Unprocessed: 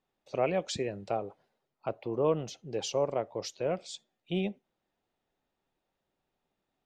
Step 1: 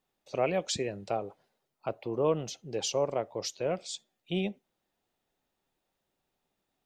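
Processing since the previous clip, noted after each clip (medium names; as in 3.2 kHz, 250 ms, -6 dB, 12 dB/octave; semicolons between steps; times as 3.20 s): treble shelf 4.1 kHz +7 dB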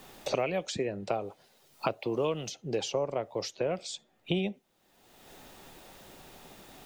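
three bands compressed up and down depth 100%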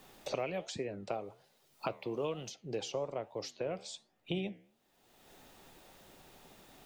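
flange 1.2 Hz, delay 6.3 ms, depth 8.3 ms, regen -86%; trim -2 dB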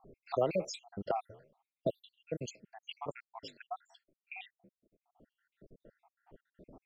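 random holes in the spectrogram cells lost 77%; level-controlled noise filter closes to 490 Hz, open at -40.5 dBFS; trim +7.5 dB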